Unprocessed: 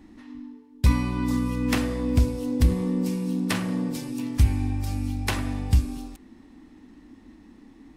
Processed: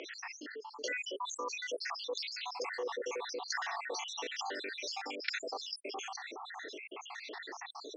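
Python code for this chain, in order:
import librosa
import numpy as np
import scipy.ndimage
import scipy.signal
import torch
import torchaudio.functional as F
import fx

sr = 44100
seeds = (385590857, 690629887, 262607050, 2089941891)

y = fx.spec_dropout(x, sr, seeds[0], share_pct=78)
y = scipy.signal.sosfilt(scipy.signal.cheby1(5, 1.0, [410.0, 6400.0], 'bandpass', fs=sr, output='sos'), y)
y = fx.env_flatten(y, sr, amount_pct=70)
y = y * 10.0 ** (-4.0 / 20.0)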